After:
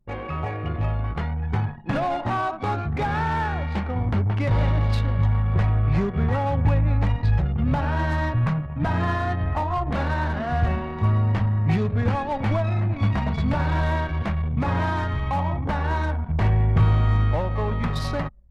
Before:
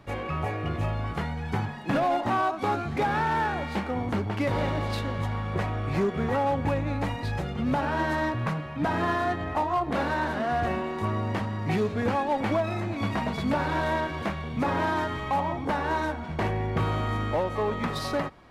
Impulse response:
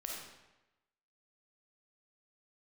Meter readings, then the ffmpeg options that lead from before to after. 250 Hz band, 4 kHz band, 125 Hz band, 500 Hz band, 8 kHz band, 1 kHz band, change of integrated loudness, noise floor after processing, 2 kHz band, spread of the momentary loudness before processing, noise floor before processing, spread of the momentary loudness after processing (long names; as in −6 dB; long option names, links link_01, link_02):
+1.5 dB, −1.0 dB, +10.0 dB, −1.5 dB, can't be measured, 0.0 dB, +4.5 dB, −32 dBFS, 0.0 dB, 5 LU, −35 dBFS, 5 LU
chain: -filter_complex "[0:a]asplit=2[link_01][link_02];[1:a]atrim=start_sample=2205[link_03];[link_02][link_03]afir=irnorm=-1:irlink=0,volume=-15.5dB[link_04];[link_01][link_04]amix=inputs=2:normalize=0,anlmdn=6.31,asubboost=boost=5.5:cutoff=130"